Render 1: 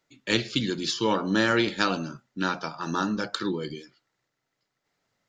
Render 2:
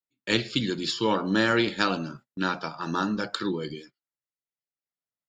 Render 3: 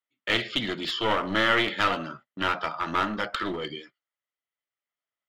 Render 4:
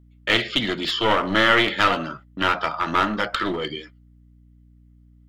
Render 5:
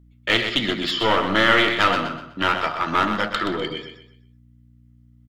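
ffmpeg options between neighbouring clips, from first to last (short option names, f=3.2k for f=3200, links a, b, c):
-af "bandreject=f=6.1k:w=6.6,agate=range=-26dB:threshold=-47dB:ratio=16:detection=peak"
-filter_complex "[0:a]asplit=2[a][b];[b]highpass=f=720:p=1,volume=11dB,asoftclip=type=tanh:threshold=-5dB[c];[a][c]amix=inputs=2:normalize=0,lowpass=f=1.3k:p=1,volume=-6dB,aeval=exprs='clip(val(0),-1,0.0376)':c=same,equalizer=f=630:t=o:w=0.33:g=5,equalizer=f=1.25k:t=o:w=0.33:g=7,equalizer=f=2k:t=o:w=0.33:g=10,equalizer=f=3.15k:t=o:w=0.33:g=11,volume=-2dB"
-af "aeval=exprs='val(0)+0.00158*(sin(2*PI*60*n/s)+sin(2*PI*2*60*n/s)/2+sin(2*PI*3*60*n/s)/3+sin(2*PI*4*60*n/s)/4+sin(2*PI*5*60*n/s)/5)':c=same,volume=5.5dB"
-af "aecho=1:1:125|250|375|500:0.398|0.123|0.0383|0.0119"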